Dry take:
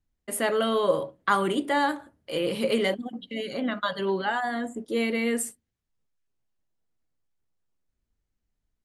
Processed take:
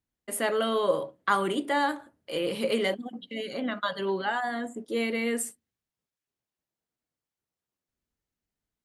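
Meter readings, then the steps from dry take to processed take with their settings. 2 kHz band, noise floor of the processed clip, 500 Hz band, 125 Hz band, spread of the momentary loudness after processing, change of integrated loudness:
-1.5 dB, under -85 dBFS, -2.0 dB, -4.0 dB, 10 LU, -2.0 dB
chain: high-pass 160 Hz 6 dB/octave; trim -1.5 dB

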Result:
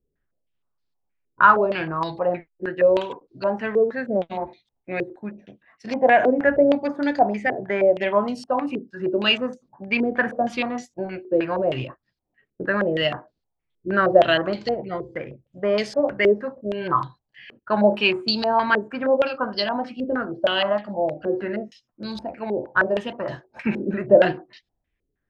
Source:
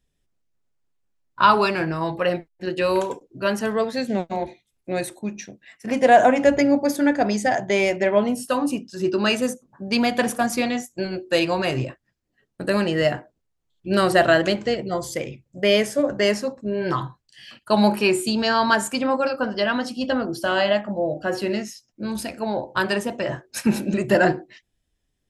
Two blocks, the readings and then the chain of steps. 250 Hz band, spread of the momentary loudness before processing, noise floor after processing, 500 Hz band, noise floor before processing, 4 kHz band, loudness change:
-3.5 dB, 12 LU, -79 dBFS, +0.5 dB, -75 dBFS, -0.5 dB, -0.5 dB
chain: step-sequenced low-pass 6.4 Hz 420–4400 Hz; trim -4.5 dB

